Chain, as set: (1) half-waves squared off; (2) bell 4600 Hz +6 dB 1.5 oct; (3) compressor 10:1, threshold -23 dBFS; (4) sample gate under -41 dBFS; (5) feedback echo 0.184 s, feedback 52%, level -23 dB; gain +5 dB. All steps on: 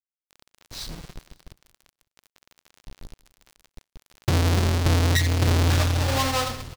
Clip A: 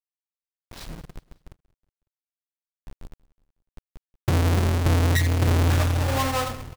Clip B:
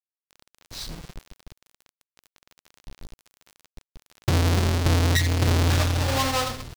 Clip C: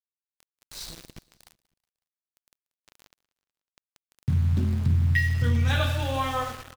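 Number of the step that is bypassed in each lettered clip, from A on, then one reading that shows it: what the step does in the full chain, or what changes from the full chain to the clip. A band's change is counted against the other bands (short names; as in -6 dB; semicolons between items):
2, 4 kHz band -5.0 dB; 5, echo-to-direct -21.5 dB to none; 1, distortion -5 dB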